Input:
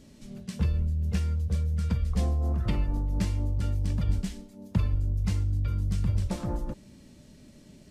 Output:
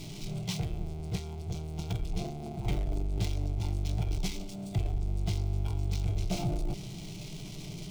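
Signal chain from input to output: power-law waveshaper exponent 0.5; static phaser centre 360 Hz, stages 8; formant shift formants -6 st; trim -3.5 dB

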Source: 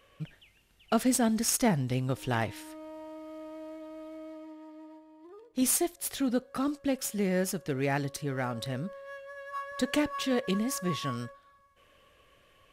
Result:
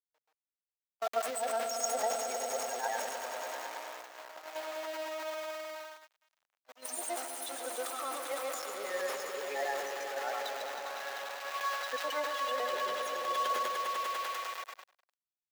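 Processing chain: short-time spectra conjugated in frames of 241 ms; loudest bins only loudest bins 16; in parallel at +0.5 dB: compression 8:1, threshold -40 dBFS, peak gain reduction 16 dB; on the sum: echo with a slow build-up 82 ms, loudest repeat 5, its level -10 dB; tempo 0.82×; small samples zeroed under -35.5 dBFS; high-pass 590 Hz 24 dB/octave; gate -41 dBFS, range -32 dB; peaking EQ 9.8 kHz -6 dB 0.62 oct; transient shaper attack +3 dB, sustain +8 dB

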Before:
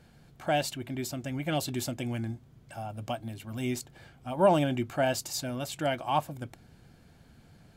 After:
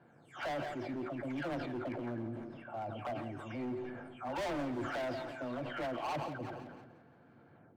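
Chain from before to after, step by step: delay that grows with frequency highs early, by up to 378 ms; Chebyshev band-pass 120–1400 Hz, order 2; resonant low shelf 240 Hz -7 dB, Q 1.5; de-hum 187.7 Hz, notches 2; in parallel at -3 dB: compression, threshold -40 dBFS, peak gain reduction 20.5 dB; on the sum: overload inside the chain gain 31.5 dB; two-band feedback delay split 330 Hz, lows 228 ms, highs 171 ms, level -14 dB; on a send at -18 dB: reverberation RT60 0.60 s, pre-delay 90 ms; on the sum: decay stretcher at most 35 dB/s; trim -3.5 dB

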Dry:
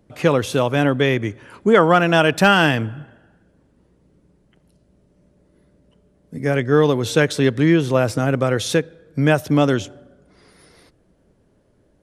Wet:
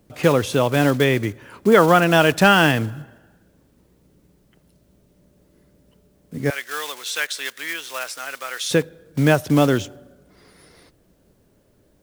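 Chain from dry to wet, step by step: block-companded coder 5-bit; 6.50–8.71 s: high-pass 1.5 kHz 12 dB/octave; word length cut 12-bit, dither triangular

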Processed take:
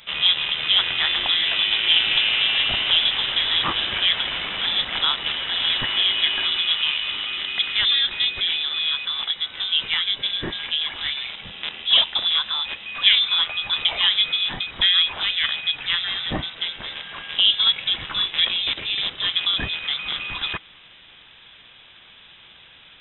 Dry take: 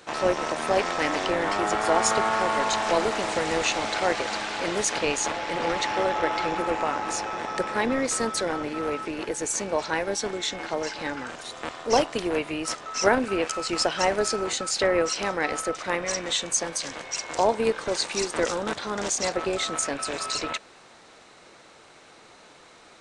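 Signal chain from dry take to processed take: bass shelf 320 Hz +6.5 dB; frequency inversion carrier 3.8 kHz; trim +2.5 dB

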